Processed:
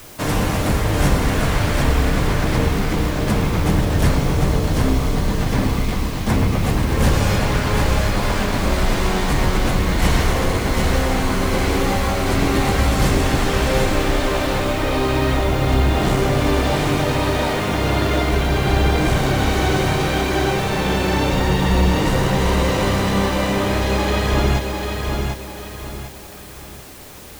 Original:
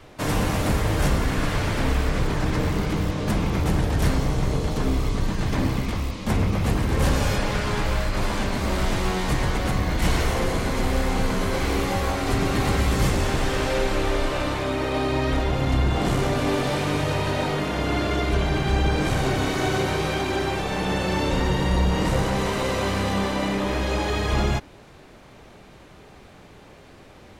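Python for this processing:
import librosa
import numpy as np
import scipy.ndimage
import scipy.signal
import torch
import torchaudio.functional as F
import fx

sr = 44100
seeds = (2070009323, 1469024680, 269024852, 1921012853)

p1 = fx.echo_feedback(x, sr, ms=746, feedback_pct=36, wet_db=-4.5)
p2 = fx.quant_dither(p1, sr, seeds[0], bits=6, dither='triangular')
y = p1 + (p2 * librosa.db_to_amplitude(-6.0))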